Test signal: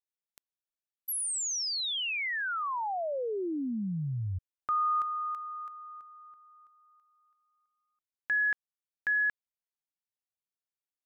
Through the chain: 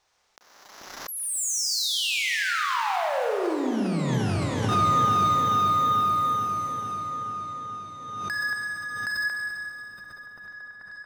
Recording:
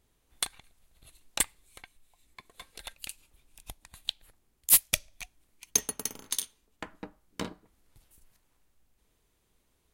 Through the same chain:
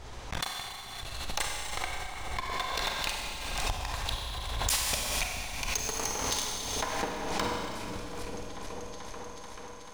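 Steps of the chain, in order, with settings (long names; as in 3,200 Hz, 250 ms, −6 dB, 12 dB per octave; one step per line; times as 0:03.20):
drawn EQ curve 100 Hz 0 dB, 200 Hz −9 dB, 860 Hz +5 dB, 2,900 Hz −3 dB, 5,800 Hz −1 dB, 12,000 Hz −22 dB
pitch vibrato 15 Hz 8.6 cents
downward compressor 6 to 1, threshold −42 dBFS
leveller curve on the samples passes 5
echo whose low-pass opens from repeat to repeat 436 ms, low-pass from 200 Hz, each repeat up 1 octave, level −3 dB
four-comb reverb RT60 2.6 s, combs from 31 ms, DRR −1.5 dB
background raised ahead of every attack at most 34 dB per second
level −1.5 dB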